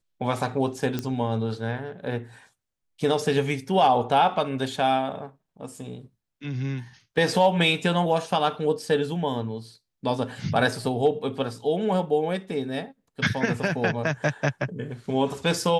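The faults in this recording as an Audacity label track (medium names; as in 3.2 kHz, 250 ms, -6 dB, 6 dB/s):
0.990000	0.990000	pop -14 dBFS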